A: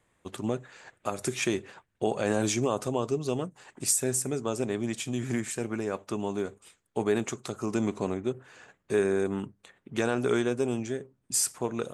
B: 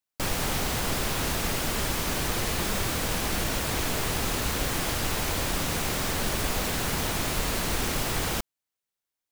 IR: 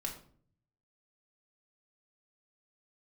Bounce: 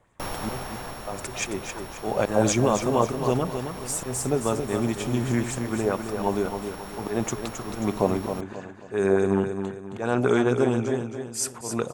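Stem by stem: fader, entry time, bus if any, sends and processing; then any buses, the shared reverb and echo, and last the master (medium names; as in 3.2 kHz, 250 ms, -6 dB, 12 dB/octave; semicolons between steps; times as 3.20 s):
-2.0 dB, 0.00 s, no send, echo send -7.5 dB, bass shelf 280 Hz +11 dB; slow attack 157 ms; sweeping bell 4.6 Hz 510–7300 Hz +8 dB
-3.5 dB, 0.00 s, no send, no echo send, sorted samples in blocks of 8 samples; band-stop 5.3 kHz, Q 6.4; auto duck -10 dB, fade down 1.15 s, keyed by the first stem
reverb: none
echo: feedback delay 268 ms, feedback 39%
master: peaking EQ 890 Hz +8 dB 1.7 oct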